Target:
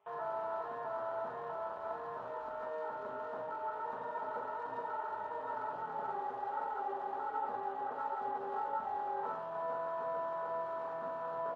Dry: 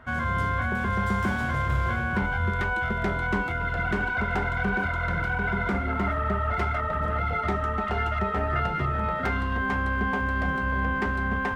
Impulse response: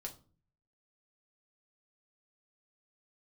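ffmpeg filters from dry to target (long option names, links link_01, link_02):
-filter_complex "[0:a]aemphasis=mode=reproduction:type=75fm,aresample=11025,acrusher=bits=3:mode=log:mix=0:aa=0.000001,aresample=44100,asetrate=27781,aresample=44100,atempo=1.5874,volume=23dB,asoftclip=hard,volume=-23dB,afwtdn=0.0355,alimiter=level_in=4.5dB:limit=-24dB:level=0:latency=1:release=93,volume=-4.5dB,highpass=650[link_01];[1:a]atrim=start_sample=2205[link_02];[link_01][link_02]afir=irnorm=-1:irlink=0,volume=3.5dB"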